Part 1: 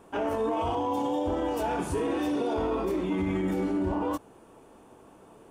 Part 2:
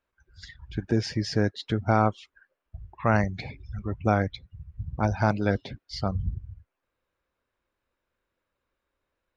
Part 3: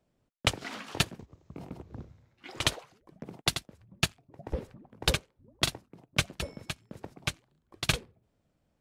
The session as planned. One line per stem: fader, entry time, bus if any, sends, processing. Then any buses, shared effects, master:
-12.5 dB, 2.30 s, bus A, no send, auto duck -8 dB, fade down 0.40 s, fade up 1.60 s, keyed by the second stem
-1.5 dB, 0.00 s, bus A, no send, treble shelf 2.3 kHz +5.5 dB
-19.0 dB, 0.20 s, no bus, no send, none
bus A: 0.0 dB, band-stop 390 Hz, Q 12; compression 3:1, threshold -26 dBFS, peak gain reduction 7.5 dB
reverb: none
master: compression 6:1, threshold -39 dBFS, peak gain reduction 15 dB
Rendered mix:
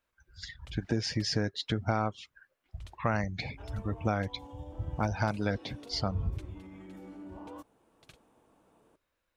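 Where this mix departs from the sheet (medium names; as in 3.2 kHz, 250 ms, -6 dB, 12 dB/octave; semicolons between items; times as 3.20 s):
stem 1: entry 2.30 s -> 3.45 s; stem 3 -19.0 dB -> -30.0 dB; master: missing compression 6:1, threshold -39 dBFS, peak gain reduction 15 dB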